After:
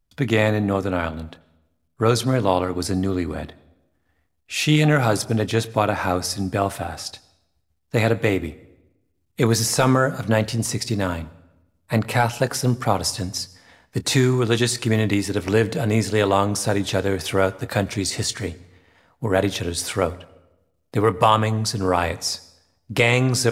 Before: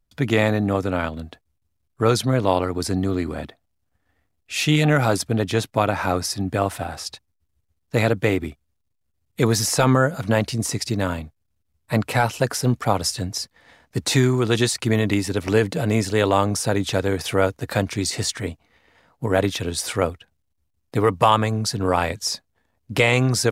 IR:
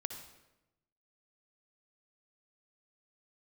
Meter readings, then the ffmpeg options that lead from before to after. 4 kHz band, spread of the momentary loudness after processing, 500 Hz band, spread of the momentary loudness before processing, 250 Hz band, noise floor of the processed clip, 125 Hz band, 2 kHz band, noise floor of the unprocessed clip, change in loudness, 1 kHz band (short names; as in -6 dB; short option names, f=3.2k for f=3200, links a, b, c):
0.0 dB, 12 LU, 0.0 dB, 11 LU, 0.0 dB, -69 dBFS, +0.5 dB, 0.0 dB, -72 dBFS, 0.0 dB, 0.0 dB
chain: -filter_complex "[0:a]asplit=2[a][b];[1:a]atrim=start_sample=2205,adelay=26[c];[b][c]afir=irnorm=-1:irlink=0,volume=-13dB[d];[a][d]amix=inputs=2:normalize=0"